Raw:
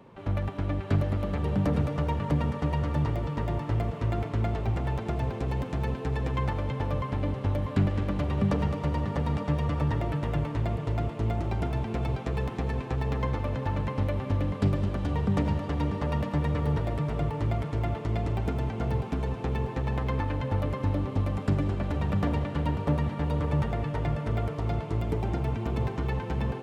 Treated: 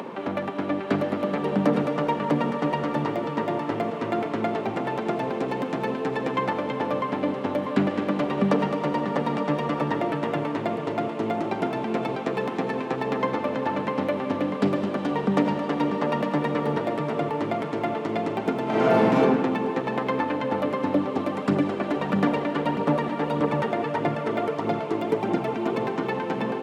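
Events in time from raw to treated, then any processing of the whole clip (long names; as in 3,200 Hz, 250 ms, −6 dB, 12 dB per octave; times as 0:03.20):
0:18.63–0:19.18: thrown reverb, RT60 1.6 s, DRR −8 dB
0:20.94–0:25.80: phase shifter 1.6 Hz, delay 3.4 ms, feedback 35%
whole clip: upward compression, threshold −33 dBFS; high-pass filter 210 Hz 24 dB per octave; high-shelf EQ 5,000 Hz −8 dB; level +8.5 dB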